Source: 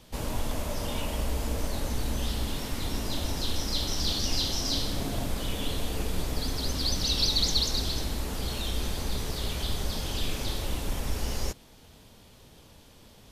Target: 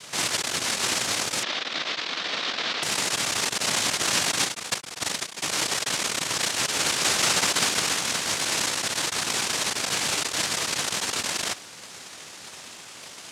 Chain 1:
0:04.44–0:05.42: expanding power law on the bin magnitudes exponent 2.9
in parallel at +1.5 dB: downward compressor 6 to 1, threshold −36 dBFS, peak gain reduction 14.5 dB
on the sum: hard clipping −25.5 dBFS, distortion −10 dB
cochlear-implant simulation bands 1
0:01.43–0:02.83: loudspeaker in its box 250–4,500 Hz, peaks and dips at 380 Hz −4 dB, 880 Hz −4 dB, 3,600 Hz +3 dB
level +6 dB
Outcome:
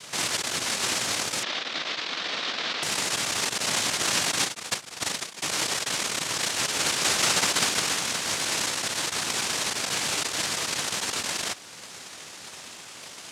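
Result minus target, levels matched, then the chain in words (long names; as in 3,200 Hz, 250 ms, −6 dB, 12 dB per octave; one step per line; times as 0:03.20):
downward compressor: peak gain reduction +9 dB
0:04.44–0:05.42: expanding power law on the bin magnitudes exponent 2.9
in parallel at +1.5 dB: downward compressor 6 to 1, threshold −25 dBFS, peak gain reduction 5.5 dB
on the sum: hard clipping −25.5 dBFS, distortion −7 dB
cochlear-implant simulation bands 1
0:01.43–0:02.83: loudspeaker in its box 250–4,500 Hz, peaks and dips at 380 Hz −4 dB, 880 Hz −4 dB, 3,600 Hz +3 dB
level +6 dB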